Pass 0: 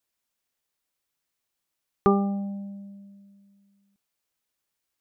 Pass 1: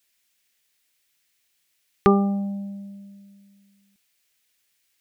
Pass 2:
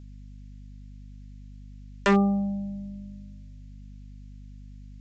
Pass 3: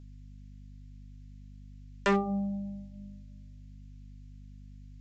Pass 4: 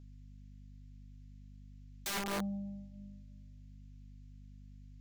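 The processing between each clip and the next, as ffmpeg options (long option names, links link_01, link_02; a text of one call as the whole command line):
ffmpeg -i in.wav -af "highshelf=frequency=1500:width_type=q:width=1.5:gain=8,volume=4dB" out.wav
ffmpeg -i in.wav -af "aresample=16000,aeval=exprs='0.2*(abs(mod(val(0)/0.2+3,4)-2)-1)':channel_layout=same,aresample=44100,aeval=exprs='val(0)+0.00708*(sin(2*PI*50*n/s)+sin(2*PI*2*50*n/s)/2+sin(2*PI*3*50*n/s)/3+sin(2*PI*4*50*n/s)/4+sin(2*PI*5*50*n/s)/5)':channel_layout=same" out.wav
ffmpeg -i in.wav -af "flanger=delay=7.1:depth=1.2:regen=-76:speed=0.98:shape=triangular" out.wav
ffmpeg -i in.wav -af "aeval=exprs='(mod(22.4*val(0)+1,2)-1)/22.4':channel_layout=same,volume=-4.5dB" out.wav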